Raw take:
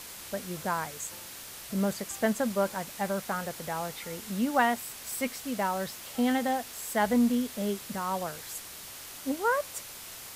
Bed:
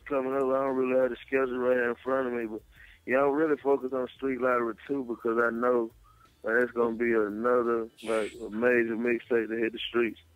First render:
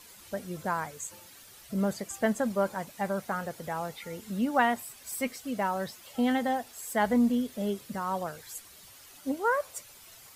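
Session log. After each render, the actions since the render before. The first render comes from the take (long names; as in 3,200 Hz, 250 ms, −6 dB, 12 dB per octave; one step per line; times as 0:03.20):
broadband denoise 11 dB, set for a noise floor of −44 dBFS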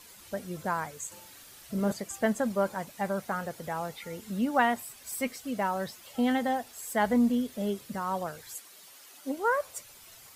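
0:01.07–0:01.92: flutter between parallel walls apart 7.6 metres, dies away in 0.37 s
0:08.55–0:09.37: high-pass filter 260 Hz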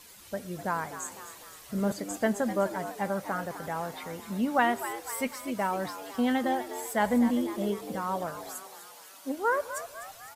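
echo with shifted repeats 252 ms, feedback 54%, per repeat +100 Hz, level −12 dB
four-comb reverb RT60 1.9 s, combs from 27 ms, DRR 19.5 dB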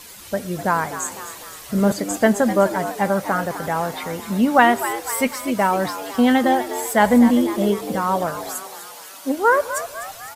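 level +11 dB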